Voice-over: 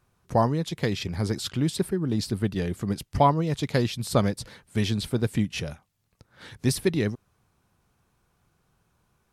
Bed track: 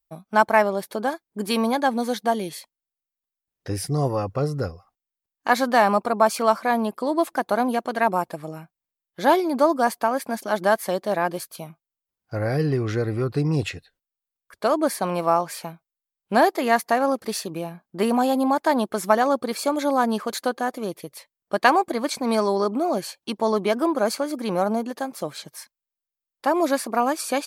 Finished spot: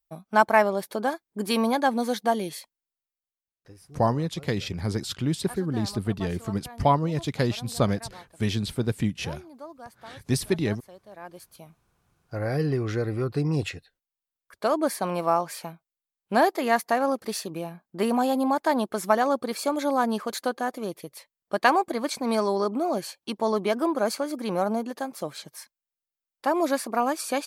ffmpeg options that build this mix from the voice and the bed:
-filter_complex "[0:a]adelay=3650,volume=-1dB[a];[1:a]volume=19dB,afade=t=out:st=2.79:d=0.95:silence=0.0794328,afade=t=in:st=11.11:d=1.48:silence=0.0944061[b];[a][b]amix=inputs=2:normalize=0"

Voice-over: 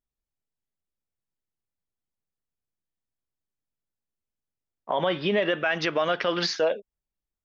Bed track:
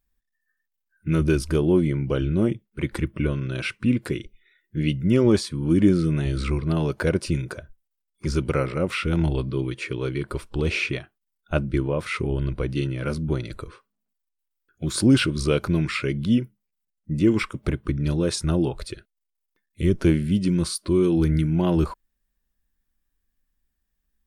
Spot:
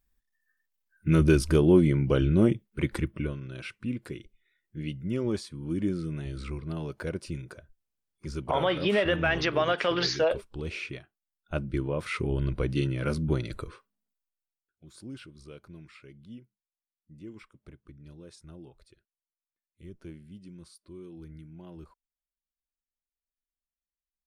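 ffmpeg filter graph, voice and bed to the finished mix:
-filter_complex "[0:a]adelay=3600,volume=-1dB[a];[1:a]volume=9.5dB,afade=t=out:st=2.68:d=0.71:silence=0.266073,afade=t=in:st=11.19:d=1.48:silence=0.334965,afade=t=out:st=13.7:d=1.04:silence=0.0668344[b];[a][b]amix=inputs=2:normalize=0"

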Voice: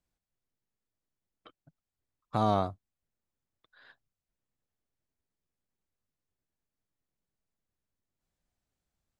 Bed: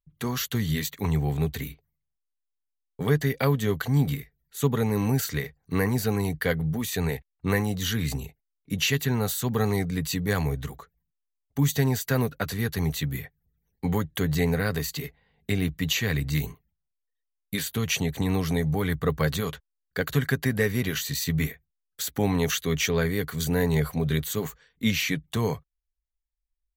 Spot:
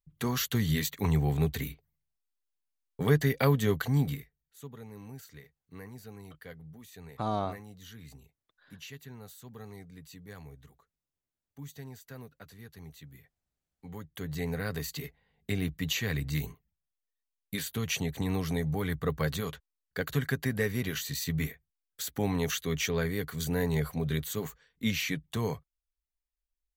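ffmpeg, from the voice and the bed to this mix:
-filter_complex "[0:a]adelay=4850,volume=-4.5dB[a];[1:a]volume=14.5dB,afade=t=out:st=3.69:d=0.95:silence=0.1,afade=t=in:st=13.82:d=1.16:silence=0.158489[b];[a][b]amix=inputs=2:normalize=0"

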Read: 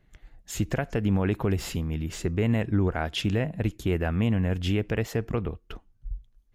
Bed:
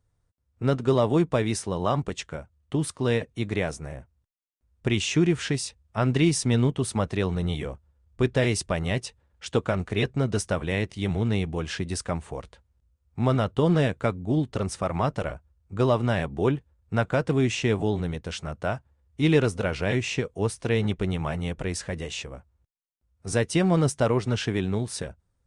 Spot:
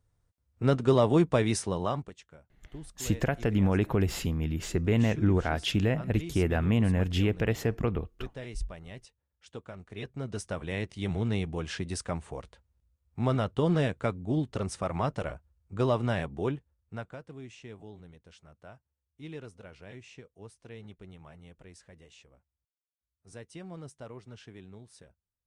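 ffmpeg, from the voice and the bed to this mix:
-filter_complex "[0:a]adelay=2500,volume=-0.5dB[a];[1:a]volume=13dB,afade=t=out:st=1.66:d=0.48:silence=0.133352,afade=t=in:st=9.82:d=1.33:silence=0.199526,afade=t=out:st=16.12:d=1.09:silence=0.133352[b];[a][b]amix=inputs=2:normalize=0"

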